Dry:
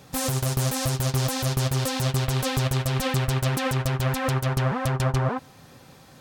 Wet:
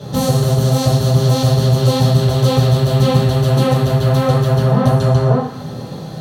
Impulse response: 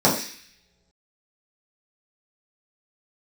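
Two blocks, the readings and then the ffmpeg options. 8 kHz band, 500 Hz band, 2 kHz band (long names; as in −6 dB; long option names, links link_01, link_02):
+2.0 dB, +13.0 dB, +1.0 dB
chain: -filter_complex "[0:a]acompressor=threshold=-31dB:ratio=5[link_01];[1:a]atrim=start_sample=2205,asetrate=33516,aresample=44100[link_02];[link_01][link_02]afir=irnorm=-1:irlink=0,volume=-5dB"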